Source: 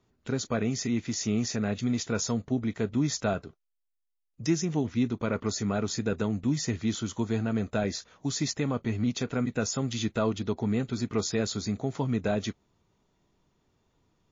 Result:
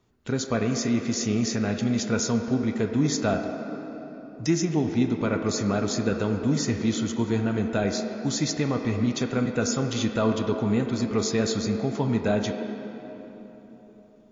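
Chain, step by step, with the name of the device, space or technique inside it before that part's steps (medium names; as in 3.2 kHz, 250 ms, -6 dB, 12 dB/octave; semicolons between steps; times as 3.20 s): filtered reverb send (on a send: high-pass 200 Hz 24 dB/octave + low-pass 3.3 kHz 12 dB/octave + reverberation RT60 3.8 s, pre-delay 22 ms, DRR 4.5 dB); on the sum: trim +3 dB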